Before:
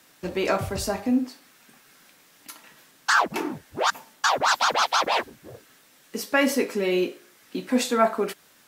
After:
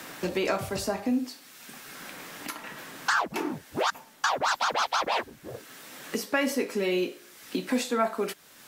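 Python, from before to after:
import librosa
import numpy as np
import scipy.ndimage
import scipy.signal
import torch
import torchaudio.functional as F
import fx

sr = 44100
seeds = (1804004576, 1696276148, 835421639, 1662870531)

y = fx.band_squash(x, sr, depth_pct=70)
y = y * librosa.db_to_amplitude(-4.0)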